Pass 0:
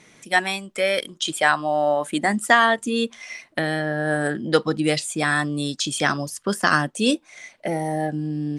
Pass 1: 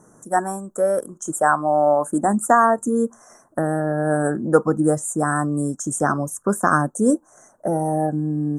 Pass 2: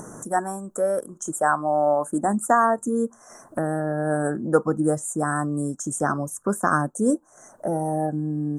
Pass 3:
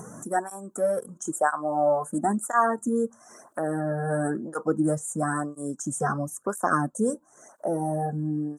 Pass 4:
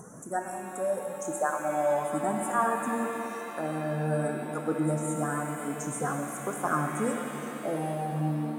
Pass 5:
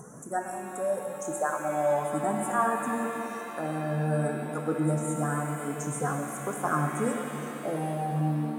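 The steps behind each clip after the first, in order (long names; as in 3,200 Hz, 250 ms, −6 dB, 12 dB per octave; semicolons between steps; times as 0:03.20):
inverse Chebyshev band-stop filter 2,100–4,800 Hz, stop band 40 dB; level +3.5 dB
upward compression, threshold −23 dBFS; level −3.5 dB
through-zero flanger with one copy inverted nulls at 0.99 Hz, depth 3.5 ms
reverb with rising layers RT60 3.9 s, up +7 semitones, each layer −8 dB, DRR 2 dB; level −5.5 dB
convolution reverb RT60 0.50 s, pre-delay 3 ms, DRR 13.5 dB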